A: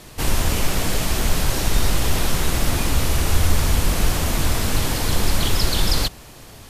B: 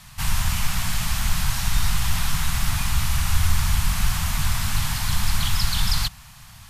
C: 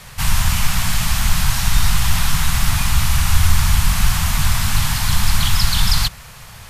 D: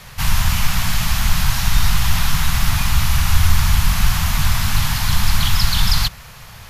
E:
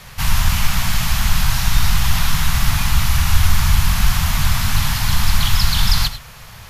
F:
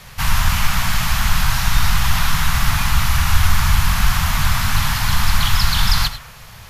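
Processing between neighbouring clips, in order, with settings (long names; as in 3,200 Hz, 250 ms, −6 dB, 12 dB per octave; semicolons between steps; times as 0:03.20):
Chebyshev band-stop filter 160–1,000 Hz, order 2; level −1.5 dB
noise in a band 390–2,500 Hz −54 dBFS; level +6 dB
parametric band 8,500 Hz −6.5 dB 0.4 octaves
reverb whose tail is shaped and stops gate 120 ms rising, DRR 11.5 dB
dynamic equaliser 1,300 Hz, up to +5 dB, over −41 dBFS, Q 0.81; level −1 dB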